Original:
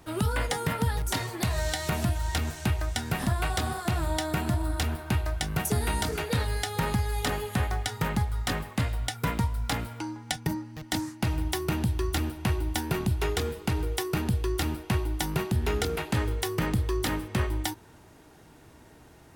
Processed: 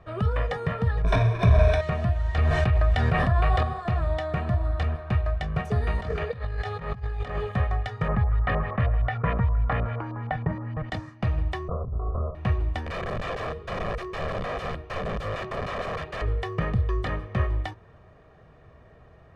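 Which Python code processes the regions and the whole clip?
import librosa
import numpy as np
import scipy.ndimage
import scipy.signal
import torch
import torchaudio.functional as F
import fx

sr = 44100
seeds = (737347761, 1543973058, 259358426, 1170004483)

y = fx.chain(x, sr, fx.halfwave_hold(),
    fx.ripple_eq(per_octave=1.6, db=14), at=(1.04, 1.81))
y = fx.chain(y, sr, fx.peak_eq(hz=6300.0, db=-4.0, octaves=0.35),
    fx.notch(hz=210.0, q=5.4),
    fx.env_flatten(amount_pct=100), at=(2.38, 3.63))
y = fx.chain(y, sr, fx.over_compress(threshold_db=-31.0, ratio=-0.5),
    fx.doppler_dist(depth_ms=0.17), at=(5.97, 7.52))
y = fx.chain(y, sr, fx.filter_lfo_lowpass(shape='saw_up', hz=6.4, low_hz=760.0, high_hz=4000.0, q=1.4),
    fx.env_flatten(amount_pct=50), at=(8.08, 10.9))
y = fx.chain(y, sr, fx.lower_of_two(delay_ms=1.8),
    fx.cheby1_lowpass(hz=1400.0, order=10),
    fx.over_compress(threshold_db=-30.0, ratio=-0.5), at=(11.68, 12.35))
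y = fx.chain(y, sr, fx.peak_eq(hz=120.0, db=5.0, octaves=1.8),
    fx.hum_notches(base_hz=60, count=2),
    fx.overflow_wrap(gain_db=25.5), at=(12.86, 16.22))
y = scipy.signal.sosfilt(scipy.signal.butter(2, 2000.0, 'lowpass', fs=sr, output='sos'), y)
y = y + 0.69 * np.pad(y, (int(1.7 * sr / 1000.0), 0))[:len(y)]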